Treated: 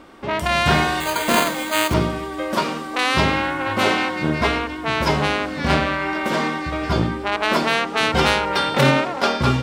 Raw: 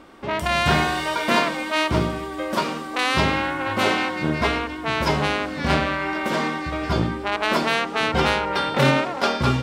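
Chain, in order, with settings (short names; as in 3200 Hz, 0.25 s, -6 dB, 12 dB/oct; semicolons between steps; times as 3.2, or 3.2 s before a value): 1–1.94 careless resampling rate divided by 8×, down none, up hold; 7.97–8.81 high shelf 4000 Hz +6 dB; gain +2 dB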